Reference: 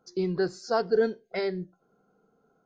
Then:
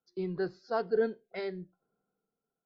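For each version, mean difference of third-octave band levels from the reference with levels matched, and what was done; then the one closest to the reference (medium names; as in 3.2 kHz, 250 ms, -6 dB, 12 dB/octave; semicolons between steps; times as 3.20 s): 2.0 dB: low-pass 4.1 kHz 24 dB/octave; three bands expanded up and down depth 40%; trim -6.5 dB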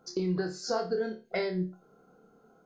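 4.0 dB: compression 5:1, threshold -35 dBFS, peak gain reduction 15 dB; flutter echo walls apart 4.7 m, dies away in 0.28 s; trim +5.5 dB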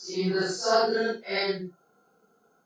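7.0 dB: phase randomisation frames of 200 ms; tilt EQ +2.5 dB/octave; trim +5 dB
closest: first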